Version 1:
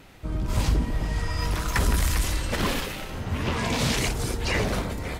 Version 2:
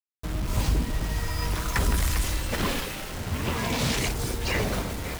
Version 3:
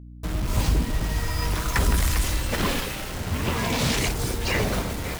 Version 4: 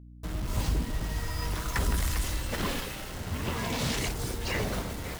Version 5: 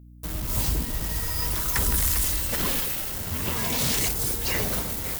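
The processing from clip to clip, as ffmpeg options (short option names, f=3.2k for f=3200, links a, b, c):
-af "acrusher=bits=5:mix=0:aa=0.000001,volume=-1.5dB"
-af "aeval=exprs='val(0)+0.00708*(sin(2*PI*60*n/s)+sin(2*PI*2*60*n/s)/2+sin(2*PI*3*60*n/s)/3+sin(2*PI*4*60*n/s)/4+sin(2*PI*5*60*n/s)/5)':c=same,volume=2.5dB"
-af "bandreject=f=2.4k:w=26,volume=-6.5dB"
-af "aemphasis=mode=production:type=50fm,volume=1.5dB"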